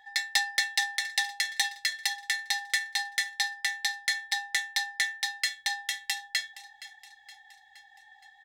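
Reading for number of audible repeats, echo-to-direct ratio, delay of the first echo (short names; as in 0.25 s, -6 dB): 4, -15.5 dB, 0.469 s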